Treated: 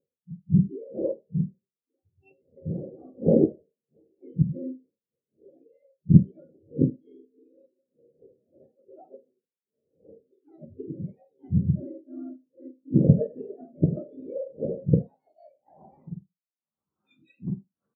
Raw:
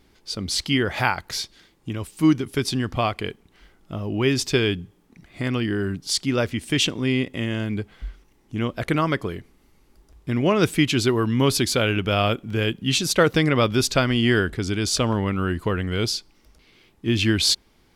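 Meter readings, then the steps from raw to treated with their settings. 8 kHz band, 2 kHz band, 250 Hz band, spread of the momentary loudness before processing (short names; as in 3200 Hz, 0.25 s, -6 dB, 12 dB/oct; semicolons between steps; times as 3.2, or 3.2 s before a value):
under -40 dB, under -40 dB, -4.5 dB, 13 LU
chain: spectrum mirrored in octaves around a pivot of 920 Hz; wind noise 440 Hz -28 dBFS; tone controls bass +14 dB, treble +4 dB; notches 60/120/180/240/300/360/420/480 Hz; added harmonics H 2 -6 dB, 3 -26 dB, 5 -14 dB, 7 -18 dB, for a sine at 11.5 dBFS; band-pass sweep 500 Hz -> 1500 Hz, 14.59–17.25; on a send: early reflections 13 ms -12 dB, 78 ms -13 dB; on the sum: Schroeder reverb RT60 0.42 s, combs from 31 ms, DRR 6.5 dB; spectral expander 2.5:1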